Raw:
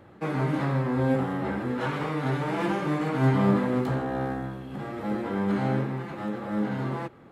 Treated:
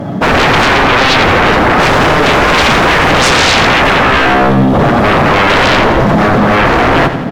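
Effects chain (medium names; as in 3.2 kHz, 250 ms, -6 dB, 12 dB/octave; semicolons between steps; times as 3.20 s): median filter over 15 samples; comb 7.1 ms, depth 46%; small resonant body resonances 200/640/3300 Hz, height 15 dB, ringing for 35 ms; sine folder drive 18 dB, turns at -8.5 dBFS; feedback delay 86 ms, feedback 58%, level -11 dB; trim +3 dB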